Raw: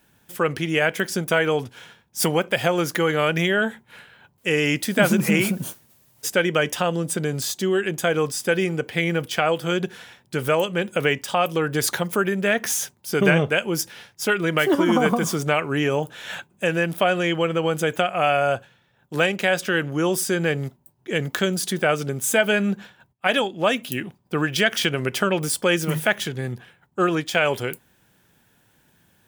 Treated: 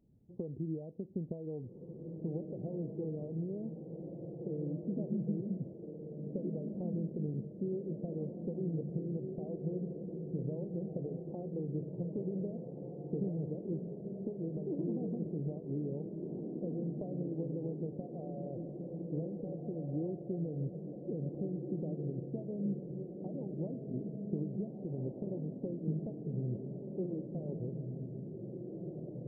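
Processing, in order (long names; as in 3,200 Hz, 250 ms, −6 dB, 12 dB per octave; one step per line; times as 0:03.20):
downward compressor 6 to 1, threshold −28 dBFS, peak gain reduction 15 dB
Gaussian smoothing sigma 20 samples
on a send: feedback delay with all-pass diffusion 1,681 ms, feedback 52%, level −3.5 dB
on the sum: level −2.5 dB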